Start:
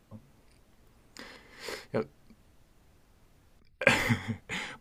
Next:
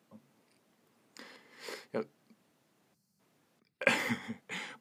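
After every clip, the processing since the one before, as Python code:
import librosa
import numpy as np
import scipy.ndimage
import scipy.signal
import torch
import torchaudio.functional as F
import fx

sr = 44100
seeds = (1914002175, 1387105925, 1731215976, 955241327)

y = fx.spec_box(x, sr, start_s=2.94, length_s=0.26, low_hz=230.0, high_hz=4100.0, gain_db=-17)
y = scipy.signal.sosfilt(scipy.signal.butter(4, 160.0, 'highpass', fs=sr, output='sos'), y)
y = F.gain(torch.from_numpy(y), -4.5).numpy()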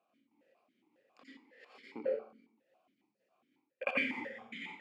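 y = fx.step_gate(x, sr, bpm=146, pattern='x..xx.x.xx.', floor_db=-24.0, edge_ms=4.5)
y = fx.rev_plate(y, sr, seeds[0], rt60_s=0.6, hf_ratio=0.8, predelay_ms=75, drr_db=-5.0)
y = fx.vowel_held(y, sr, hz=7.3)
y = F.gain(torch.from_numpy(y), 4.0).numpy()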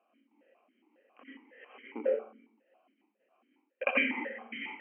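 y = fx.brickwall_bandpass(x, sr, low_hz=200.0, high_hz=3200.0)
y = F.gain(torch.from_numpy(y), 5.0).numpy()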